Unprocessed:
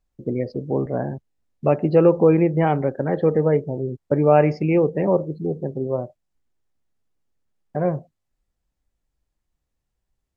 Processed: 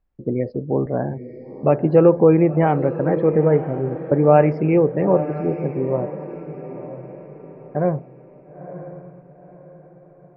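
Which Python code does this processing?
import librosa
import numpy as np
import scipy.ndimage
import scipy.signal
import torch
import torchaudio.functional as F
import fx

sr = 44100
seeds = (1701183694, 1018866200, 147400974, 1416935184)

p1 = scipy.signal.sosfilt(scipy.signal.butter(2, 2200.0, 'lowpass', fs=sr, output='sos'), x)
p2 = p1 + fx.echo_diffused(p1, sr, ms=958, feedback_pct=41, wet_db=-12.0, dry=0)
y = p2 * librosa.db_to_amplitude(2.0)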